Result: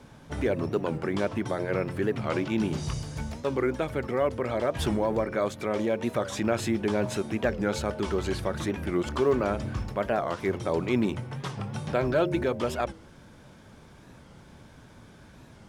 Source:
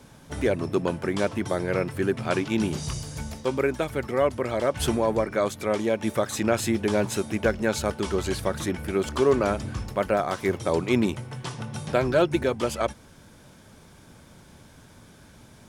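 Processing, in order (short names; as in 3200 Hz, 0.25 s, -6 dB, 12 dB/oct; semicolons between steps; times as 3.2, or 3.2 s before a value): LPF 3300 Hz 6 dB/oct; de-hum 89.13 Hz, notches 7; in parallel at +1 dB: limiter -21.5 dBFS, peak gain reduction 11 dB; on the sum: short-mantissa float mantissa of 6-bit; record warp 45 rpm, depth 160 cents; gain -6 dB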